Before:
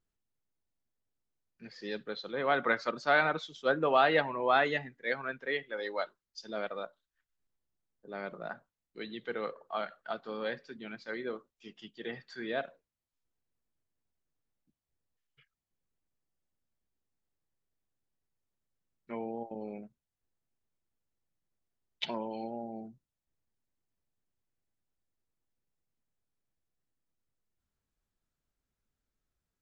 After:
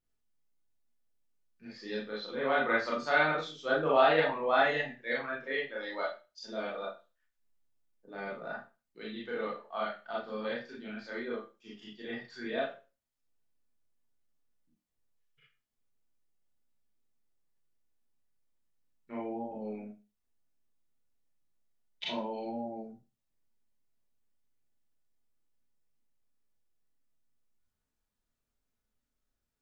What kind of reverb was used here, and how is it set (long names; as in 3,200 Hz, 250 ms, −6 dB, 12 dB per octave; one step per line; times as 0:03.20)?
four-comb reverb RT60 0.3 s, combs from 26 ms, DRR −5.5 dB
level −6 dB